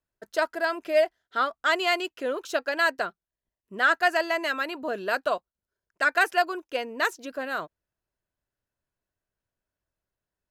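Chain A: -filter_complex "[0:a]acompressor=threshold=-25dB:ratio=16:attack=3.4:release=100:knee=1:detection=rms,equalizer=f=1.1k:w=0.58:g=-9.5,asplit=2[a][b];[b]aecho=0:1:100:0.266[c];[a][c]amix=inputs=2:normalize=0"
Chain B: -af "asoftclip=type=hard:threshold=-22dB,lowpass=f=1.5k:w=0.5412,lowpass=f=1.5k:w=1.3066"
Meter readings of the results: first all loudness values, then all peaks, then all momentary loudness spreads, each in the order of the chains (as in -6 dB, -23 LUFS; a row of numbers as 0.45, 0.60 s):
-38.0, -31.0 LUFS; -22.5, -20.0 dBFS; 7, 6 LU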